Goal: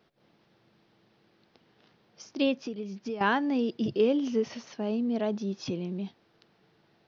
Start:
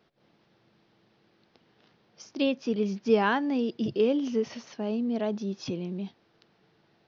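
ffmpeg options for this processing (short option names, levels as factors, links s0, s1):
-filter_complex "[0:a]asettb=1/sr,asplit=3[s0][s1][s2];[s0]atrim=end=2.554[s3];[s1]atrim=start=2.55:end=3.21,asetpts=PTS-STARTPTS,afade=t=in:d=0.004:c=qsin,afade=t=out:st=0.656:d=0.004:c=qsin,acompressor=threshold=0.02:ratio=5[s4];[s2]atrim=start=3.206[s5];[s3][s4]acrossfade=d=0.004:c1=hsin:c2=qsin[s6];[s6][s5]acrossfade=d=0.004:c1=qsin:c2=hsin"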